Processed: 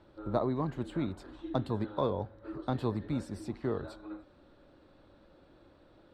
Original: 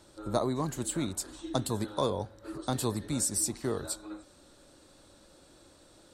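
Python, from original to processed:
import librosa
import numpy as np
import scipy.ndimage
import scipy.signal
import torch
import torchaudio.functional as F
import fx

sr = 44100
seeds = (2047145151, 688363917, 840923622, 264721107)

y = fx.air_absorb(x, sr, metres=390.0)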